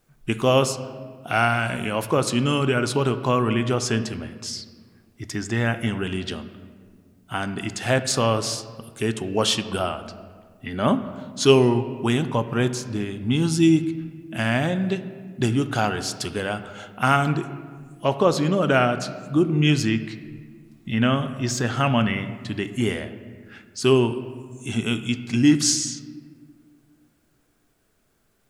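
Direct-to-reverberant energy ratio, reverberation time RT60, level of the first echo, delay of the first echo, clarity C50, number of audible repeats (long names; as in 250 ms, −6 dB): 10.0 dB, 1.7 s, no echo audible, no echo audible, 12.0 dB, no echo audible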